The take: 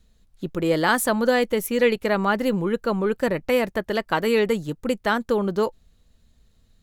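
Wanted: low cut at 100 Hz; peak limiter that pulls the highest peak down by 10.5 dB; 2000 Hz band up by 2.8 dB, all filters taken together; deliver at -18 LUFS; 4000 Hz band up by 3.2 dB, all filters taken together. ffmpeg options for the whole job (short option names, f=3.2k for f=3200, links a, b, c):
-af "highpass=100,equalizer=f=2k:t=o:g=3,equalizer=f=4k:t=o:g=3,volume=7.5dB,alimiter=limit=-8dB:level=0:latency=1"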